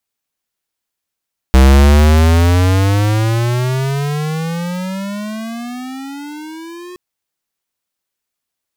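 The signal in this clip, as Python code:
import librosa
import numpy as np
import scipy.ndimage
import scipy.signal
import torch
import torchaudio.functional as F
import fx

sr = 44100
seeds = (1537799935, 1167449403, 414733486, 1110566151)

y = fx.riser_tone(sr, length_s=5.42, level_db=-5.5, wave='square', hz=64.4, rise_st=30.0, swell_db=-26.0)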